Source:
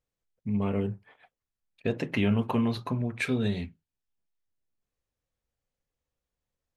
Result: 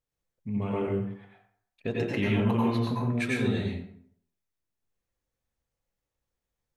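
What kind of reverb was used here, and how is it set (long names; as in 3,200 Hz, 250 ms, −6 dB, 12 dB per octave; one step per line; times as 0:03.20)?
dense smooth reverb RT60 0.63 s, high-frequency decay 0.65×, pre-delay 80 ms, DRR −3.5 dB
level −3.5 dB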